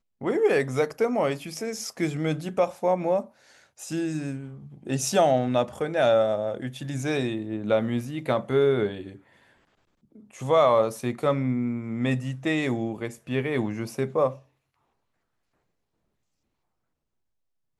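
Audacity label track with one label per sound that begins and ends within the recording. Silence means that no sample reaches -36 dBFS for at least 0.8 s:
10.350000	14.350000	sound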